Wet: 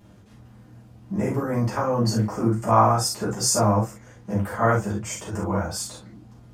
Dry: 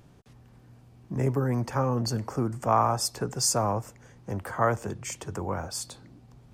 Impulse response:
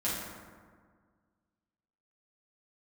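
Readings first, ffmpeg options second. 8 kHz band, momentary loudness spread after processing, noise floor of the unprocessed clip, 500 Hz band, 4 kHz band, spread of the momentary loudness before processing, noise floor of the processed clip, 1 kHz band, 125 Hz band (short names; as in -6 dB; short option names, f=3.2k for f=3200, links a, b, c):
+4.0 dB, 13 LU, -55 dBFS, +5.0 dB, +3.5 dB, 13 LU, -50 dBFS, +5.0 dB, +5.0 dB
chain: -filter_complex "[1:a]atrim=start_sample=2205,atrim=end_sample=3528[a];[0:a][a]afir=irnorm=-1:irlink=0"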